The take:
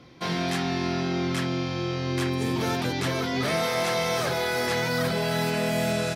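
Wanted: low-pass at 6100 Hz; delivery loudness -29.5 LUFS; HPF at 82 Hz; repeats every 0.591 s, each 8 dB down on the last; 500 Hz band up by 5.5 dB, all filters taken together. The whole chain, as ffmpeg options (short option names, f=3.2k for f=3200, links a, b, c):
-af "highpass=82,lowpass=6.1k,equalizer=f=500:t=o:g=7,aecho=1:1:591|1182|1773|2364|2955:0.398|0.159|0.0637|0.0255|0.0102,volume=-6dB"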